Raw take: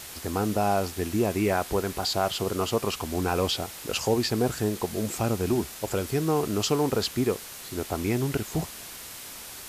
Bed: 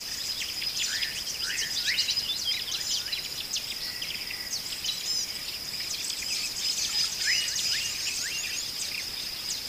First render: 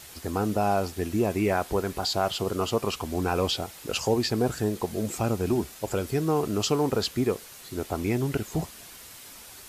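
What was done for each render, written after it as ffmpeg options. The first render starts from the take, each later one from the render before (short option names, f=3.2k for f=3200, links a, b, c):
-af "afftdn=nr=6:nf=-42"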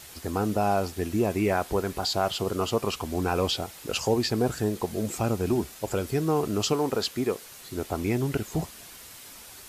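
-filter_complex "[0:a]asettb=1/sr,asplit=3[a][b][c];[a]atrim=end=6.734[d];[b]atrim=start=6.73:end=7.45,asetpts=PTS-STARTPTS,afade=t=in:d=0.004:c=qsin,afade=t=out:st=0.716:d=0.004:c=qsin,lowshelf=f=140:g=-10.5[e];[c]atrim=start=7.446[f];[d][e]acrossfade=d=0.004:c1=hsin:c2=qsin[g];[g][f]acrossfade=d=0.004:c1=qsin:c2=hsin"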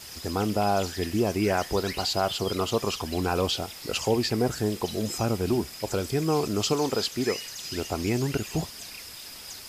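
-filter_complex "[1:a]volume=-10dB[a];[0:a][a]amix=inputs=2:normalize=0"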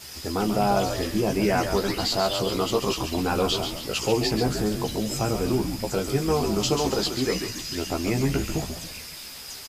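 -filter_complex "[0:a]asplit=2[a][b];[b]adelay=15,volume=-4dB[c];[a][c]amix=inputs=2:normalize=0,asplit=2[d][e];[e]asplit=5[f][g][h][i][j];[f]adelay=138,afreqshift=-76,volume=-7dB[k];[g]adelay=276,afreqshift=-152,volume=-13.9dB[l];[h]adelay=414,afreqshift=-228,volume=-20.9dB[m];[i]adelay=552,afreqshift=-304,volume=-27.8dB[n];[j]adelay=690,afreqshift=-380,volume=-34.7dB[o];[k][l][m][n][o]amix=inputs=5:normalize=0[p];[d][p]amix=inputs=2:normalize=0"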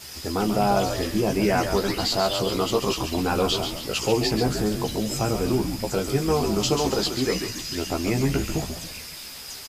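-af "volume=1dB"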